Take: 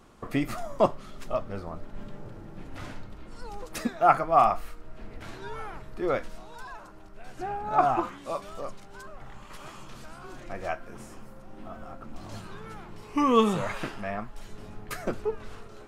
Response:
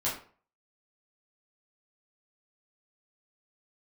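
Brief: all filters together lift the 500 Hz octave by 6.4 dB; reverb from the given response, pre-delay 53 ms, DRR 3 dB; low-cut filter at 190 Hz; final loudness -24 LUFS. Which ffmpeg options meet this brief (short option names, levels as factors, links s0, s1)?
-filter_complex "[0:a]highpass=190,equalizer=f=500:t=o:g=8.5,asplit=2[s0][s1];[1:a]atrim=start_sample=2205,adelay=53[s2];[s1][s2]afir=irnorm=-1:irlink=0,volume=0.316[s3];[s0][s3]amix=inputs=2:normalize=0,volume=0.891"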